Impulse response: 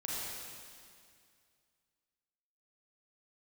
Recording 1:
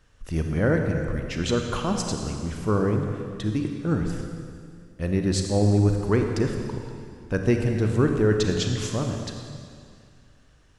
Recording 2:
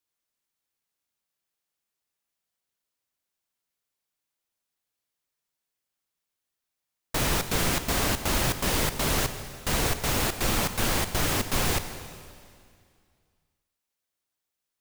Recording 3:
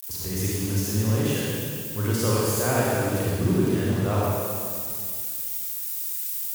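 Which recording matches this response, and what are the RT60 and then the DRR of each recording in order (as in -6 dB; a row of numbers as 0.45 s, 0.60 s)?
3; 2.2 s, 2.2 s, 2.2 s; 3.0 dB, 9.5 dB, -6.5 dB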